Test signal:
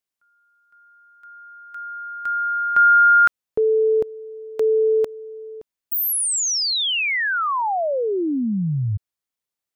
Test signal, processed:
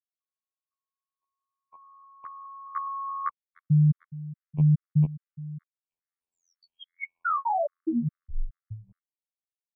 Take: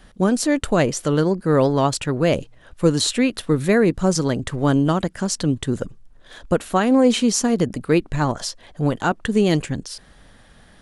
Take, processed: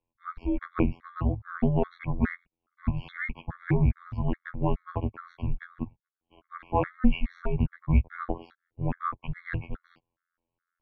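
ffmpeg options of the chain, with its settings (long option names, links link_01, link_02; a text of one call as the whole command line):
ffmpeg -i in.wav -af "agate=range=-26dB:threshold=-41dB:ratio=16:release=27:detection=rms,afftfilt=real='hypot(re,im)*cos(PI*b)':imag='0':win_size=2048:overlap=0.75,highpass=frequency=200:width_type=q:width=0.5412,highpass=frequency=200:width_type=q:width=1.307,lowpass=frequency=2600:width_type=q:width=0.5176,lowpass=frequency=2600:width_type=q:width=0.7071,lowpass=frequency=2600:width_type=q:width=1.932,afreqshift=-280,afftfilt=real='re*gt(sin(2*PI*2.4*pts/sr)*(1-2*mod(floor(b*sr/1024/1100),2)),0)':imag='im*gt(sin(2*PI*2.4*pts/sr)*(1-2*mod(floor(b*sr/1024/1100),2)),0)':win_size=1024:overlap=0.75" out.wav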